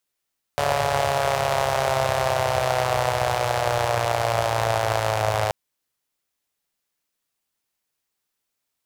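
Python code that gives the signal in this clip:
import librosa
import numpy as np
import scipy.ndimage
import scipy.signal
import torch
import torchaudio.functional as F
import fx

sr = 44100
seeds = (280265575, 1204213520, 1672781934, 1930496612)

y = fx.engine_four_rev(sr, seeds[0], length_s=4.93, rpm=4300, resonances_hz=(100.0, 640.0), end_rpm=3200)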